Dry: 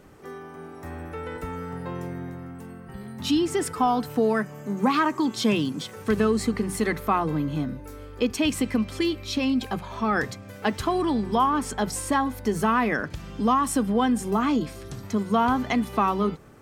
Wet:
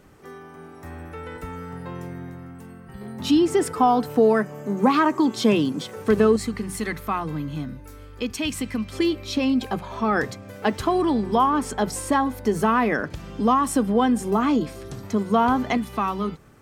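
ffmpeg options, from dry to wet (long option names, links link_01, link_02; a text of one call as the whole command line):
ffmpeg -i in.wav -af "asetnsamples=nb_out_samples=441:pad=0,asendcmd='3.01 equalizer g 6;6.36 equalizer g -5.5;8.93 equalizer g 4;15.77 equalizer g -4',equalizer=frequency=480:width_type=o:width=2.2:gain=-2.5" out.wav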